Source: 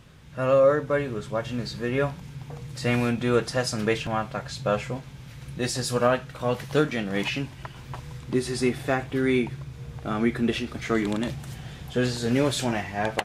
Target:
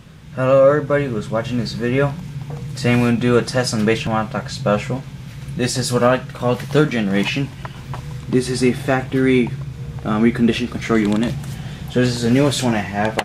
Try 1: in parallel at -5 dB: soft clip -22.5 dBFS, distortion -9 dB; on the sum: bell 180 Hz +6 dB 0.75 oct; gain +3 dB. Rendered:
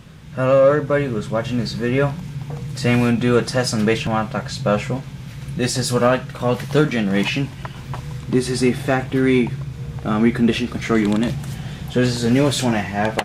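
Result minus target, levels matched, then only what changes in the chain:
soft clip: distortion +10 dB
change: soft clip -13.5 dBFS, distortion -20 dB

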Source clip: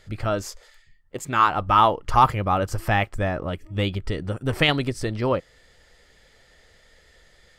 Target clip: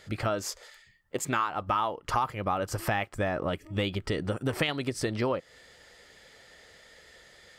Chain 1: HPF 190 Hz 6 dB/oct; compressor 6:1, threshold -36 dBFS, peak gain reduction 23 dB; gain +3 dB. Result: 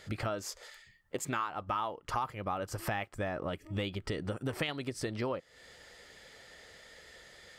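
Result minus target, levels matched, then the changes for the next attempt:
compressor: peak gain reduction +6 dB
change: compressor 6:1, threshold -28.5 dBFS, peak gain reduction 16.5 dB

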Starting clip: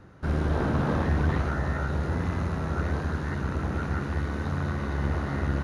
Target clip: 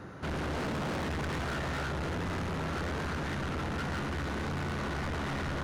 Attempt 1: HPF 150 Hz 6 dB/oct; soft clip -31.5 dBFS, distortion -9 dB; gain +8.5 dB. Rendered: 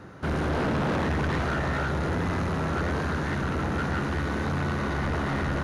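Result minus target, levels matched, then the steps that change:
soft clip: distortion -4 dB
change: soft clip -41 dBFS, distortion -4 dB

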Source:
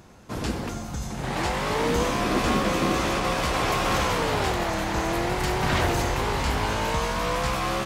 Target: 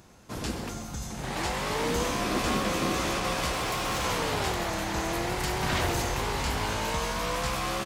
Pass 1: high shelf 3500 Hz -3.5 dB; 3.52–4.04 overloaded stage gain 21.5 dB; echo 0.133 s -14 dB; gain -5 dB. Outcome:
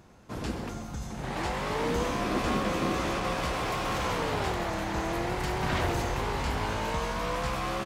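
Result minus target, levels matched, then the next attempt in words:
8000 Hz band -6.0 dB
high shelf 3500 Hz +6 dB; 3.52–4.04 overloaded stage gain 21.5 dB; echo 0.133 s -14 dB; gain -5 dB

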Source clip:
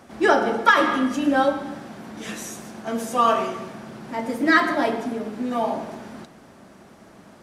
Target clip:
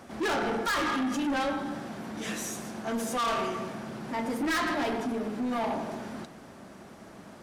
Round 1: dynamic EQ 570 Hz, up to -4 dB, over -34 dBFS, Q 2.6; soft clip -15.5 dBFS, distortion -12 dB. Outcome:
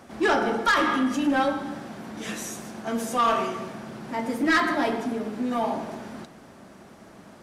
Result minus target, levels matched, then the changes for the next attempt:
soft clip: distortion -7 dB
change: soft clip -26 dBFS, distortion -4 dB

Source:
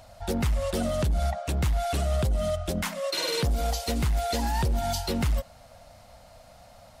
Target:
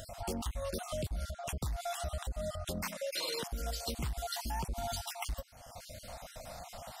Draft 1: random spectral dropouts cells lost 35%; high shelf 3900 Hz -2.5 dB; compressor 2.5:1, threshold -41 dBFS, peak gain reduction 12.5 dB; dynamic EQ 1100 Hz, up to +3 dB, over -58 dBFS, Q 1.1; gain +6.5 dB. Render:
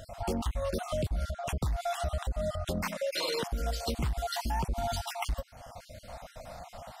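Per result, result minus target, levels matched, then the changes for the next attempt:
8000 Hz band -6.0 dB; compressor: peak gain reduction -5.5 dB
change: high shelf 3900 Hz +6.5 dB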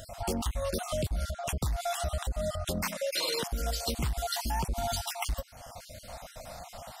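compressor: peak gain reduction -5.5 dB
change: compressor 2.5:1, threshold -50.5 dBFS, peak gain reduction 18 dB

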